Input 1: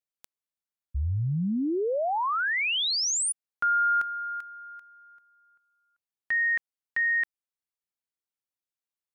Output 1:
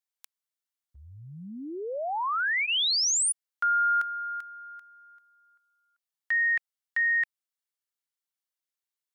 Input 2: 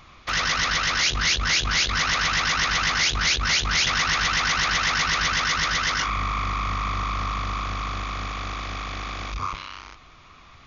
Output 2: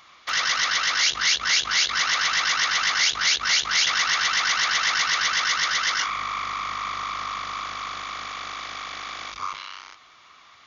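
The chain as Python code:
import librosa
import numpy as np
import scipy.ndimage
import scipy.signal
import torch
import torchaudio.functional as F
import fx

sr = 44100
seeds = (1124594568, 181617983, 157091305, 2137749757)

y = fx.highpass(x, sr, hz=1200.0, slope=6)
y = fx.notch(y, sr, hz=2500.0, q=13.0)
y = F.gain(torch.from_numpy(y), 2.0).numpy()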